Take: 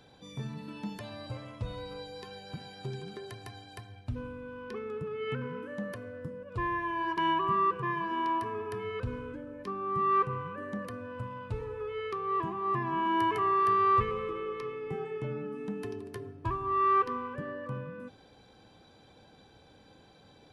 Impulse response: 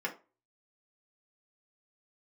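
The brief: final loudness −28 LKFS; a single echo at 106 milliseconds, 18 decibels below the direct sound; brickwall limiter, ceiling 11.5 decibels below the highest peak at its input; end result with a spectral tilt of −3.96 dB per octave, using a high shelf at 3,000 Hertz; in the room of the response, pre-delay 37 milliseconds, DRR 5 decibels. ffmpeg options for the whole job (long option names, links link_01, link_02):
-filter_complex "[0:a]highshelf=frequency=3000:gain=7.5,alimiter=level_in=2dB:limit=-24dB:level=0:latency=1,volume=-2dB,aecho=1:1:106:0.126,asplit=2[link_01][link_02];[1:a]atrim=start_sample=2205,adelay=37[link_03];[link_02][link_03]afir=irnorm=-1:irlink=0,volume=-10dB[link_04];[link_01][link_04]amix=inputs=2:normalize=0,volume=6.5dB"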